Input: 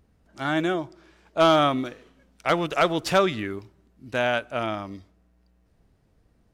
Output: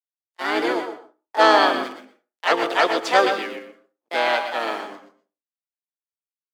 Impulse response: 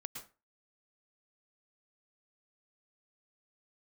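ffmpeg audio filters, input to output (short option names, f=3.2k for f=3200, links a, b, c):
-filter_complex "[0:a]aeval=exprs='sgn(val(0))*max(abs(val(0))-0.00891,0)':c=same,agate=range=-32dB:threshold=-47dB:ratio=16:detection=peak,highpass=f=300:w=0.5412,highpass=f=300:w=1.3066,asplit=2[a][b];[b]adelay=122.4,volume=-10dB,highshelf=f=4k:g=-2.76[c];[a][c]amix=inputs=2:normalize=0,asplit=3[d][e][f];[e]asetrate=35002,aresample=44100,atempo=1.25992,volume=-13dB[g];[f]asetrate=58866,aresample=44100,atempo=0.749154,volume=-1dB[h];[d][g][h]amix=inputs=3:normalize=0,asplit=2[i][j];[1:a]atrim=start_sample=2205[k];[j][k]afir=irnorm=-1:irlink=0,volume=2.5dB[l];[i][l]amix=inputs=2:normalize=0,acrossover=split=7400[m][n];[n]acompressor=threshold=-45dB:ratio=4:attack=1:release=60[o];[m][o]amix=inputs=2:normalize=0,volume=-4dB"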